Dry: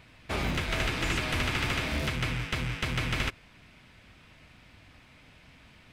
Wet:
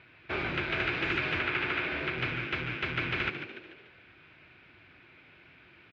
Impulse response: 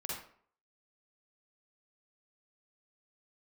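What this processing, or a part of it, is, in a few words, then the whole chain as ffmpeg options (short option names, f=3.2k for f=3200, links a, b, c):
frequency-shifting delay pedal into a guitar cabinet: -filter_complex "[0:a]asplit=6[a][b][c][d][e][f];[b]adelay=146,afreqshift=90,volume=-9.5dB[g];[c]adelay=292,afreqshift=180,volume=-16.1dB[h];[d]adelay=438,afreqshift=270,volume=-22.6dB[i];[e]adelay=584,afreqshift=360,volume=-29.2dB[j];[f]adelay=730,afreqshift=450,volume=-35.7dB[k];[a][g][h][i][j][k]amix=inputs=6:normalize=0,highpass=91,equalizer=f=220:t=q:w=4:g=-6,equalizer=f=360:t=q:w=4:g=9,equalizer=f=1.5k:t=q:w=4:g=9,equalizer=f=2.4k:t=q:w=4:g=7,lowpass=f=4k:w=0.5412,lowpass=f=4k:w=1.3066,asettb=1/sr,asplit=3[l][m][n];[l]atrim=end=1.394[o];[m]atrim=start=1.39:end=2.18,asetpts=PTS-STARTPTS,afade=t=in:d=0.004:c=qsin,afade=t=out:st=0.786:d=0.004:c=qsin,bass=f=250:g=-5,treble=f=4k:g=-6[p];[n]atrim=start=2.176[q];[o][p]acrossfade=d=0.004:c1=hsin:c2=qsin[r];[r][q]acrossfade=d=0.004:c1=qsin:c2=hsin,volume=-4.5dB"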